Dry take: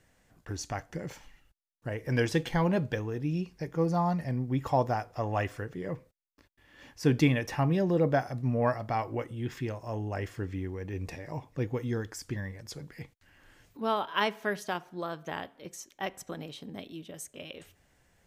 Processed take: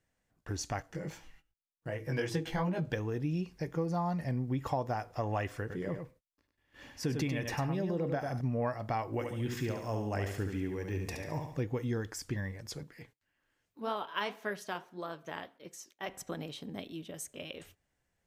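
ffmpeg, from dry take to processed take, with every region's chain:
-filter_complex "[0:a]asettb=1/sr,asplit=3[s0][s1][s2];[s0]atrim=end=0.824[s3];[s1]atrim=start=0.82:end=2.9,asetpts=PTS-STARTPTS,afade=t=in:d=0.004:c=qsin,afade=t=out:st=2.076:d=0.004:c=qsin,aecho=1:1:6.2:0.38,atrim=end_sample=91728,bandreject=f=112:t=h:w=4,bandreject=f=224:t=h:w=4,bandreject=f=336:t=h:w=4,flanger=delay=17:depth=4.3:speed=2.6[s4];[s2]atrim=start=2.896[s5];[s3][s4]acrossfade=d=0.004:c1=hsin:c2=qsin[s6];[s6][s5]acrossfade=d=0.004:c1=qsin:c2=hsin,asettb=1/sr,asplit=3[s7][s8][s9];[s7]atrim=end=5.604[s10];[s8]atrim=start=5.6:end=8.41,asetpts=PTS-STARTPTS,afade=t=in:d=0.004:c=qsin,afade=t=out:st=2.806:d=0.004:c=qsin,acompressor=threshold=0.0251:ratio=1.5:attack=3.2:release=140:knee=1:detection=peak,aecho=1:1:98:0.473,atrim=end_sample=123921[s11];[s9]atrim=start=8.406[s12];[s10][s11]acrossfade=d=0.004:c1=hsin:c2=qsin[s13];[s13][s12]acrossfade=d=0.004:c1=qsin:c2=hsin,asettb=1/sr,asplit=3[s14][s15][s16];[s14]atrim=end=9.134[s17];[s15]atrim=start=9.13:end=11.61,asetpts=PTS-STARTPTS,afade=t=in:d=0.004:c=qsin,afade=t=out:st=2.476:d=0.004:c=qsin,highshelf=f=4700:g=6.5,aecho=1:1:71|142|213|284|355:0.501|0.221|0.097|0.0427|0.0188,atrim=end_sample=109368[s18];[s16]atrim=start=11.606[s19];[s17][s18]acrossfade=d=0.004:c1=hsin:c2=qsin[s20];[s20][s19]acrossfade=d=0.004:c1=qsin:c2=hsin,asettb=1/sr,asplit=3[s21][s22][s23];[s21]atrim=end=12.834[s24];[s22]atrim=start=12.83:end=16.09,asetpts=PTS-STARTPTS,afade=t=in:d=0.004:c=qsin,afade=t=out:st=3.256:d=0.004:c=qsin,bandreject=f=790:w=20,flanger=delay=3.9:depth=9.5:regen=-67:speed=1.8:shape=triangular,lowshelf=f=130:g=-8.5[s25];[s23]atrim=start=16.086[s26];[s24][s25]acrossfade=d=0.004:c1=hsin:c2=qsin[s27];[s27][s26]acrossfade=d=0.004:c1=qsin:c2=hsin,agate=range=0.2:threshold=0.00141:ratio=16:detection=peak,acompressor=threshold=0.0355:ratio=6"

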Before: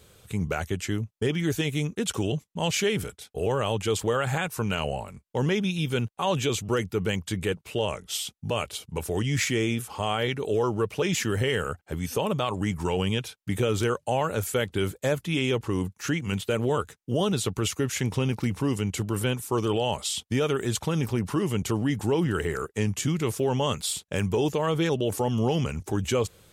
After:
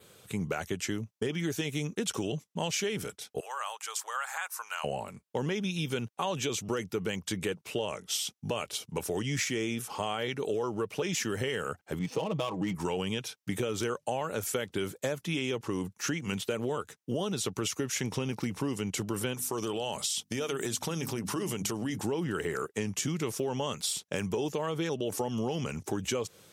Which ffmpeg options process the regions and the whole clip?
-filter_complex "[0:a]asettb=1/sr,asplit=3[s0][s1][s2];[s0]atrim=end=3.404[s3];[s1]atrim=start=3.4:end=4.84,asetpts=PTS-STARTPTS,afade=t=in:d=0.004:c=qsin,afade=t=out:st=1.436:d=0.004:c=qsin,highpass=f=960:w=0.5412,highpass=f=960:w=1.3066,equalizer=f=3100:w=1:g=-9.5[s4];[s2]atrim=start=4.836[s5];[s3][s4]acrossfade=d=0.004:c1=hsin:c2=qsin[s6];[s6][s5]acrossfade=d=0.004:c1=qsin:c2=hsin,asettb=1/sr,asplit=3[s7][s8][s9];[s7]atrim=end=11.994[s10];[s8]atrim=start=11.99:end=12.75,asetpts=PTS-STARTPTS,afade=t=in:d=0.004:c=qsin,afade=t=out:st=0.756:d=0.004:c=qsin,equalizer=f=1500:w=4:g=-13.5,aecho=1:1:6.2:0.62,atrim=end_sample=33516,adynamicsmooth=sensitivity=7:basefreq=1900[s11];[s9]atrim=start=12.746[s12];[s10][s11]acrossfade=d=0.004:c1=hsin:c2=qsin[s13];[s13][s12]acrossfade=d=0.004:c1=qsin:c2=hsin,asettb=1/sr,asplit=3[s14][s15][s16];[s14]atrim=end=19.344[s17];[s15]atrim=start=19.34:end=21.98,asetpts=PTS-STARTPTS,afade=t=in:d=0.004:c=qsin,afade=t=out:st=2.636:d=0.004:c=qsin,highshelf=f=4200:g=7,bandreject=f=50:t=h:w=6,bandreject=f=100:t=h:w=6,bandreject=f=150:t=h:w=6,bandreject=f=200:t=h:w=6,bandreject=f=250:t=h:w=6,bandreject=f=300:t=h:w=6,acompressor=threshold=0.0501:ratio=6:attack=3.2:release=140:knee=1:detection=peak[s18];[s16]atrim=start=21.976[s19];[s17][s18]acrossfade=d=0.004:c1=hsin:c2=qsin[s20];[s20][s19]acrossfade=d=0.004:c1=qsin:c2=hsin,highpass=150,adynamicequalizer=threshold=0.00251:dfrequency=5700:dqfactor=4.1:tfrequency=5700:tqfactor=4.1:attack=5:release=100:ratio=0.375:range=3:mode=boostabove:tftype=bell,acompressor=threshold=0.0398:ratio=6"

